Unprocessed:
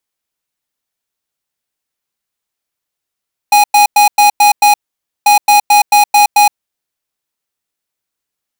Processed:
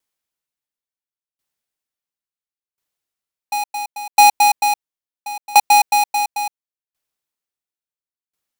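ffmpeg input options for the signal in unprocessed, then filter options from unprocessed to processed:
-f lavfi -i "aevalsrc='0.473*(2*lt(mod(827*t,1),0.5)-1)*clip(min(mod(mod(t,1.74),0.22),0.12-mod(mod(t,1.74),0.22))/0.005,0,1)*lt(mod(t,1.74),1.32)':duration=3.48:sample_rate=44100"
-af "aeval=exprs='val(0)*pow(10,-24*if(lt(mod(0.72*n/s,1),2*abs(0.72)/1000),1-mod(0.72*n/s,1)/(2*abs(0.72)/1000),(mod(0.72*n/s,1)-2*abs(0.72)/1000)/(1-2*abs(0.72)/1000))/20)':channel_layout=same"

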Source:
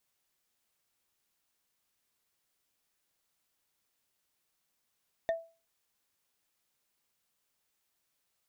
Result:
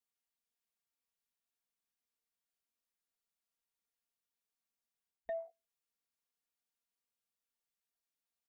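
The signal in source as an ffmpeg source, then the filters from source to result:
-f lavfi -i "aevalsrc='0.0631*pow(10,-3*t/0.33)*sin(2*PI*661*t)+0.0211*pow(10,-3*t/0.098)*sin(2*PI*1822.4*t)+0.00708*pow(10,-3*t/0.044)*sin(2*PI*3572*t)+0.00237*pow(10,-3*t/0.024)*sin(2*PI*5904.7*t)+0.000794*pow(10,-3*t/0.015)*sin(2*PI*8817.7*t)':duration=0.45:sample_rate=44100"
-af "afwtdn=0.00224,aecho=1:1:4.3:0.84,areverse,acompressor=threshold=-38dB:ratio=6,areverse"

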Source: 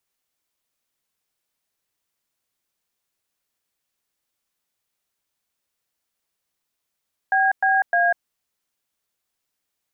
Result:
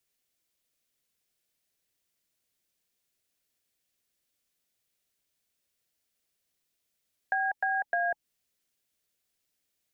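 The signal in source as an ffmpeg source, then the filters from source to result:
-f lavfi -i "aevalsrc='0.126*clip(min(mod(t,0.305),0.196-mod(t,0.305))/0.002,0,1)*(eq(floor(t/0.305),0)*(sin(2*PI*770*mod(t,0.305))+sin(2*PI*1633*mod(t,0.305)))+eq(floor(t/0.305),1)*(sin(2*PI*770*mod(t,0.305))+sin(2*PI*1633*mod(t,0.305)))+eq(floor(t/0.305),2)*(sin(2*PI*697*mod(t,0.305))+sin(2*PI*1633*mod(t,0.305))))':duration=0.915:sample_rate=44100"
-filter_complex "[0:a]equalizer=frequency=1100:width_type=o:width=0.99:gain=-7.5,bandreject=frequency=850:width=12,acrossover=split=370[link_01][link_02];[link_02]acompressor=threshold=-27dB:ratio=5[link_03];[link_01][link_03]amix=inputs=2:normalize=0"

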